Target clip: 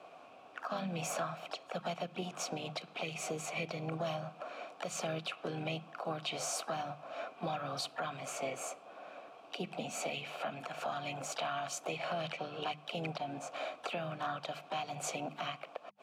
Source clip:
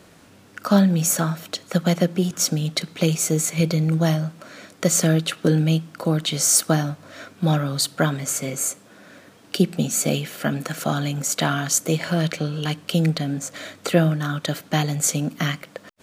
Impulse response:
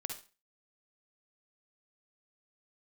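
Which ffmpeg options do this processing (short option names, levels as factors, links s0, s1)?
-filter_complex "[0:a]asplit=3[s0][s1][s2];[s0]bandpass=f=730:t=q:w=8,volume=1[s3];[s1]bandpass=f=1090:t=q:w=8,volume=0.501[s4];[s2]bandpass=f=2440:t=q:w=8,volume=0.355[s5];[s3][s4][s5]amix=inputs=3:normalize=0,acrossover=split=200|1300|2700[s6][s7][s8][s9];[s7]acompressor=threshold=0.00631:ratio=5[s10];[s6][s10][s8][s9]amix=inputs=4:normalize=0,asplit=3[s11][s12][s13];[s12]asetrate=37084,aresample=44100,atempo=1.18921,volume=0.2[s14];[s13]asetrate=55563,aresample=44100,atempo=0.793701,volume=0.224[s15];[s11][s14][s15]amix=inputs=3:normalize=0,bandreject=f=50:t=h:w=6,bandreject=f=100:t=h:w=6,bandreject=f=150:t=h:w=6,bandreject=f=200:t=h:w=6,alimiter=level_in=3.76:limit=0.0631:level=0:latency=1:release=202,volume=0.266,volume=2.66"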